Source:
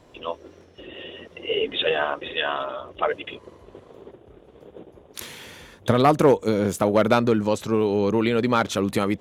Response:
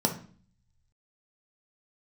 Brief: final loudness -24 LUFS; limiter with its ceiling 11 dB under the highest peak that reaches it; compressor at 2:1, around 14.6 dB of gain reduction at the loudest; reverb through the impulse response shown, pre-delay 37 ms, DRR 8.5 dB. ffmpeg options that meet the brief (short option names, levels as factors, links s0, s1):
-filter_complex "[0:a]acompressor=threshold=0.01:ratio=2,alimiter=level_in=1.33:limit=0.0631:level=0:latency=1,volume=0.75,asplit=2[s0][s1];[1:a]atrim=start_sample=2205,adelay=37[s2];[s1][s2]afir=irnorm=-1:irlink=0,volume=0.119[s3];[s0][s3]amix=inputs=2:normalize=0,volume=4.73"